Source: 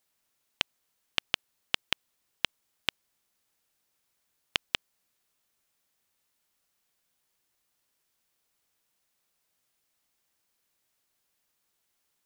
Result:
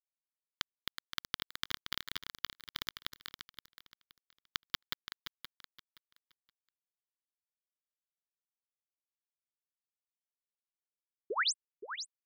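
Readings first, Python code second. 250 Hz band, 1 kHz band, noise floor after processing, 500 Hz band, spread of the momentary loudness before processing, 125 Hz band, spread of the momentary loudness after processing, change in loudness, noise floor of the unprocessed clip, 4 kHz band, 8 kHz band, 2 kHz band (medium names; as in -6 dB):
-4.0 dB, +1.5 dB, under -85 dBFS, +0.5 dB, 3 LU, -3.5 dB, 18 LU, -5.5 dB, -78 dBFS, -4.5 dB, +3.0 dB, -3.5 dB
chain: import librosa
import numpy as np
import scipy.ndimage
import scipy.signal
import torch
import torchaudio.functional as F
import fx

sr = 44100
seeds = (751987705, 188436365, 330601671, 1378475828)

p1 = fx.reverse_delay_fb(x, sr, ms=186, feedback_pct=40, wet_db=-2.0)
p2 = fx.hum_notches(p1, sr, base_hz=60, count=6)
p3 = fx.hpss(p2, sr, part='percussive', gain_db=-17)
p4 = fx.quant_dither(p3, sr, seeds[0], bits=6, dither='none')
p5 = fx.spec_paint(p4, sr, seeds[1], shape='rise', start_s=11.3, length_s=0.24, low_hz=350.0, high_hz=9700.0, level_db=-40.0)
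p6 = fx.fixed_phaser(p5, sr, hz=2600.0, stages=6)
p7 = p6 + fx.echo_feedback(p6, sr, ms=522, feedback_pct=24, wet_db=-10.0, dry=0)
y = F.gain(torch.from_numpy(p7), 12.0).numpy()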